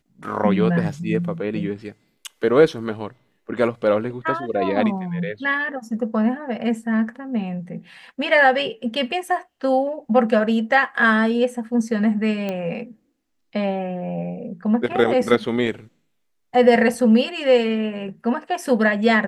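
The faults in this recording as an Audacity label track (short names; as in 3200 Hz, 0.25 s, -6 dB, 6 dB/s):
12.490000	12.490000	pop -14 dBFS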